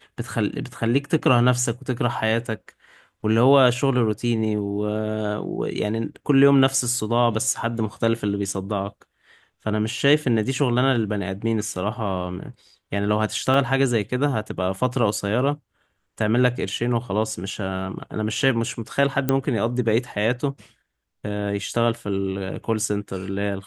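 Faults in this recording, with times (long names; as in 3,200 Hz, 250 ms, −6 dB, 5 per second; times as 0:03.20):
0:13.54: drop-out 2.5 ms
0:19.29: click −7 dBFS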